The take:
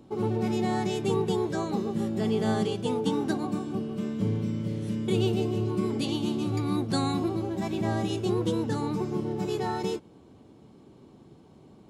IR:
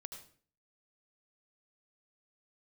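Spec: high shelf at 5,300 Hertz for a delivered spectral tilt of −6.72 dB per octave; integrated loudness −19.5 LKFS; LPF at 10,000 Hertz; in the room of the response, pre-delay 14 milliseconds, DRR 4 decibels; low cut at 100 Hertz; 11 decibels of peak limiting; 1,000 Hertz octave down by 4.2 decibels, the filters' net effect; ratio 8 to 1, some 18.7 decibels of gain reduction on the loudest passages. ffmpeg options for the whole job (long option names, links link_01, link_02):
-filter_complex "[0:a]highpass=100,lowpass=10000,equalizer=frequency=1000:width_type=o:gain=-5.5,highshelf=frequency=5300:gain=-5,acompressor=threshold=-43dB:ratio=8,alimiter=level_in=19dB:limit=-24dB:level=0:latency=1,volume=-19dB,asplit=2[link_01][link_02];[1:a]atrim=start_sample=2205,adelay=14[link_03];[link_02][link_03]afir=irnorm=-1:irlink=0,volume=0.5dB[link_04];[link_01][link_04]amix=inputs=2:normalize=0,volume=29dB"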